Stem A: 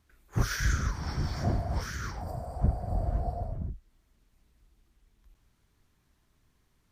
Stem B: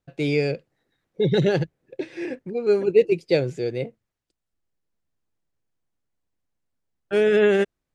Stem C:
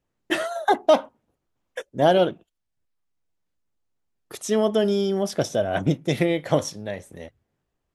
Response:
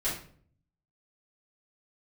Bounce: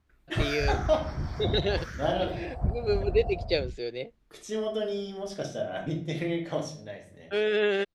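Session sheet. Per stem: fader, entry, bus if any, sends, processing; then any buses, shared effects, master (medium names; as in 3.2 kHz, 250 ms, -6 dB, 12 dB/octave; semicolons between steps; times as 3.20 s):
-1.5 dB, 0.00 s, no send, none
-5.0 dB, 0.20 s, no send, high-pass 410 Hz 6 dB/octave; peaking EQ 4 kHz +13.5 dB 0.98 oct
-16.5 dB, 0.00 s, send -4 dB, peaking EQ 5.2 kHz +9 dB 2.7 oct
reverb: on, RT60 0.50 s, pre-delay 4 ms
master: treble shelf 4.4 kHz -12 dB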